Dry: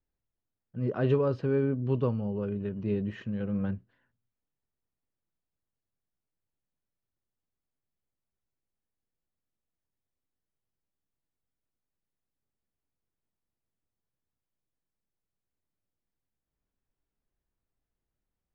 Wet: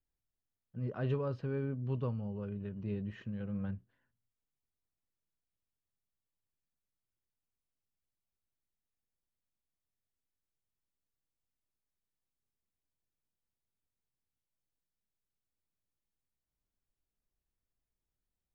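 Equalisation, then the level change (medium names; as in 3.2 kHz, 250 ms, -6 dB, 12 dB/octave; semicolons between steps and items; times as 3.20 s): dynamic bell 350 Hz, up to -5 dB, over -39 dBFS, Q 1.1; bass shelf 120 Hz +4.5 dB; -7.0 dB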